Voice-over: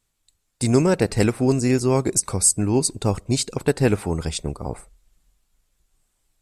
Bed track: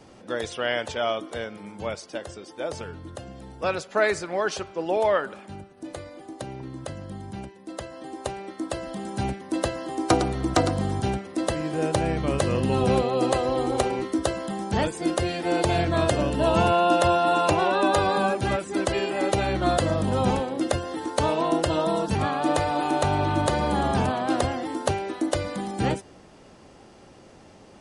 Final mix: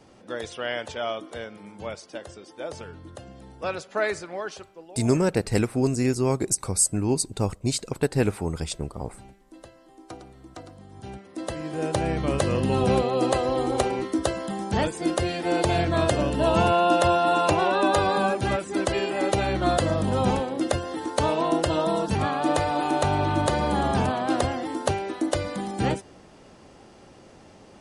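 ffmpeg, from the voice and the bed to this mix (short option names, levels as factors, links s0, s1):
-filter_complex "[0:a]adelay=4350,volume=0.631[s0];[1:a]volume=7.5,afade=t=out:st=4.11:d=0.81:silence=0.133352,afade=t=in:st=10.9:d=1.29:silence=0.0891251[s1];[s0][s1]amix=inputs=2:normalize=0"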